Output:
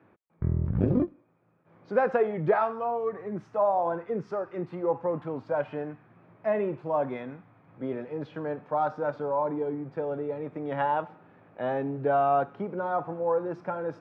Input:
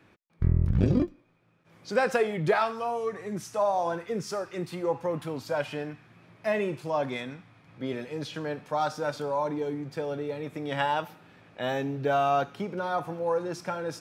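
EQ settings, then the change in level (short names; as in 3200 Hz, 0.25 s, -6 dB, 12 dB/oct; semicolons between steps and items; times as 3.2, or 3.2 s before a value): HPF 68 Hz; LPF 1200 Hz 12 dB/oct; low shelf 250 Hz -5.5 dB; +2.5 dB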